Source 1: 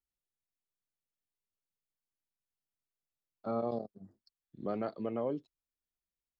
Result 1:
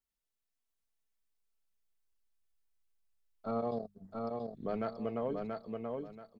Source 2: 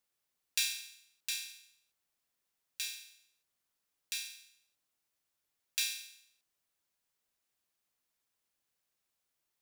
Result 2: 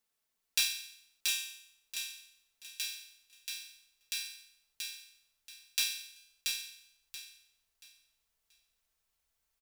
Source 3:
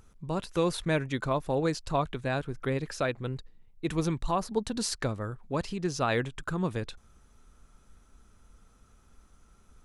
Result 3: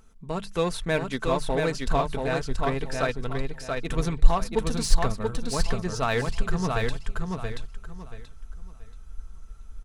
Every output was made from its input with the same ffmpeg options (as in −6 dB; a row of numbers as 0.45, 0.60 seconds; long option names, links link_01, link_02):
-filter_complex "[0:a]bandreject=frequency=50:width_type=h:width=6,bandreject=frequency=100:width_type=h:width=6,bandreject=frequency=150:width_type=h:width=6,bandreject=frequency=200:width_type=h:width=6,asubboost=boost=6.5:cutoff=88,aecho=1:1:4.5:0.44,asplit=2[link_01][link_02];[link_02]acrusher=bits=3:mix=0:aa=0.5,volume=-11.5dB[link_03];[link_01][link_03]amix=inputs=2:normalize=0,aecho=1:1:681|1362|2043|2724:0.668|0.174|0.0452|0.0117"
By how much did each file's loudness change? −1.0, +1.0, +3.0 LU